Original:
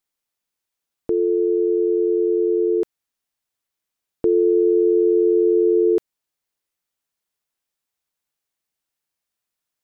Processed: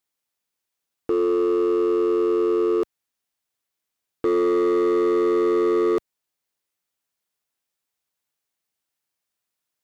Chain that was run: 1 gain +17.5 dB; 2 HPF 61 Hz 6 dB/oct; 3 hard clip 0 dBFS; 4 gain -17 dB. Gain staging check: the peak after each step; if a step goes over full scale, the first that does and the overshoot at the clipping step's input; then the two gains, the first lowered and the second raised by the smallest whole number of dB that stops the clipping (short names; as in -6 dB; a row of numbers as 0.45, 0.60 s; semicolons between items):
+7.5, +7.5, 0.0, -17.0 dBFS; step 1, 7.5 dB; step 1 +9.5 dB, step 4 -9 dB